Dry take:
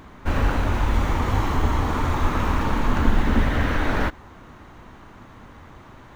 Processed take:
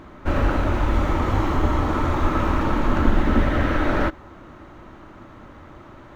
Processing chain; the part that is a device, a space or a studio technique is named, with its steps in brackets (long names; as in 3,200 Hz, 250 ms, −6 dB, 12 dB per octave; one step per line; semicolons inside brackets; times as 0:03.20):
inside a helmet (high-shelf EQ 5,700 Hz −7.5 dB; hollow resonant body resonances 330/580/1,300 Hz, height 8 dB)